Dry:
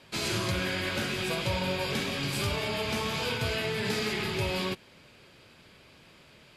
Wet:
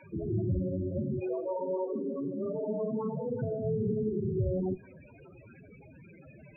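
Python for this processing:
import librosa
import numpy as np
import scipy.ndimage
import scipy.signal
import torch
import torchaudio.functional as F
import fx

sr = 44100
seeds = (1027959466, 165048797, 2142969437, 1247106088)

y = fx.delta_mod(x, sr, bps=16000, step_db=-45.0)
y = fx.highpass(y, sr, hz=fx.line((1.19, 340.0), (3.56, 120.0)), slope=24, at=(1.19, 3.56), fade=0.02)
y = fx.tube_stage(y, sr, drive_db=30.0, bias=0.5)
y = fx.spec_topn(y, sr, count=8)
y = fx.rev_double_slope(y, sr, seeds[0], early_s=0.88, late_s=2.3, knee_db=-18, drr_db=18.5)
y = F.gain(torch.from_numpy(y), 8.0).numpy()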